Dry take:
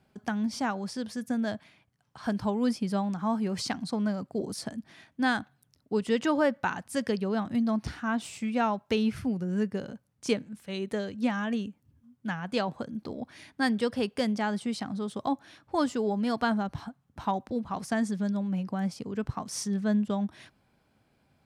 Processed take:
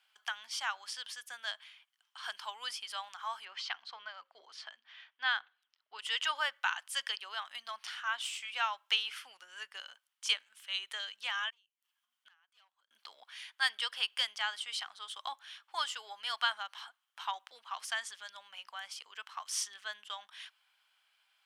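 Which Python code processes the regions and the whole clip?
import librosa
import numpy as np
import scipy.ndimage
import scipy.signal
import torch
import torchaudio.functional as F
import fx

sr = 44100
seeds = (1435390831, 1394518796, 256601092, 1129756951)

y = fx.chain(x, sr, fx.air_absorb(metres=210.0),
    fx.hum_notches(base_hz=60, count=9), at=(3.45, 5.99))
y = fx.chain(y, sr, fx.clip_hard(threshold_db=-26.0),
    fx.transient(attack_db=-9, sustain_db=1),
    fx.gate_flip(shuts_db=-34.0, range_db=-30), at=(11.5, 12.91))
y = scipy.signal.sosfilt(scipy.signal.butter(4, 1100.0, 'highpass', fs=sr, output='sos'), y)
y = fx.peak_eq(y, sr, hz=3100.0, db=12.0, octaves=0.33)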